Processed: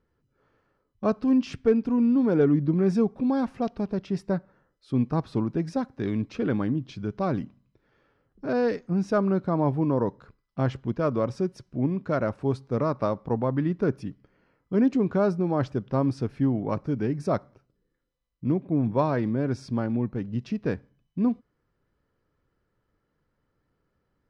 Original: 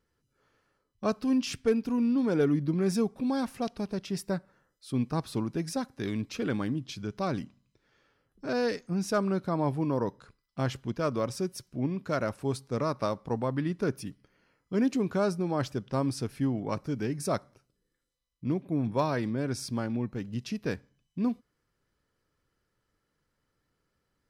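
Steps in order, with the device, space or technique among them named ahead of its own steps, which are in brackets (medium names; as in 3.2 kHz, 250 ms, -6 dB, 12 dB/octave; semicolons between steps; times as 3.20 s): through cloth (low-pass 6.4 kHz 12 dB/octave; treble shelf 2.4 kHz -14 dB); trim +5 dB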